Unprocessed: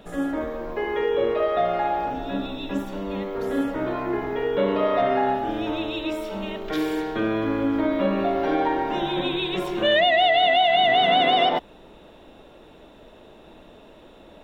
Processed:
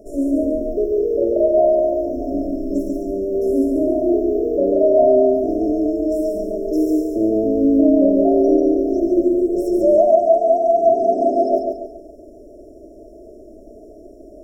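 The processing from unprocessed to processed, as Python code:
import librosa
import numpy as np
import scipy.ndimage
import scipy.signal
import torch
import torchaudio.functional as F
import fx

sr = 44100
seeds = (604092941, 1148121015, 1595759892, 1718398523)

y = fx.peak_eq(x, sr, hz=460.0, db=6.5, octaves=0.83)
y = y + 0.95 * np.pad(y, (int(3.0 * sr / 1000.0), 0))[:len(y)]
y = fx.vibrato(y, sr, rate_hz=7.7, depth_cents=18.0)
y = fx.brickwall_bandstop(y, sr, low_hz=700.0, high_hz=5100.0)
y = fx.echo_feedback(y, sr, ms=141, feedback_pct=38, wet_db=-4)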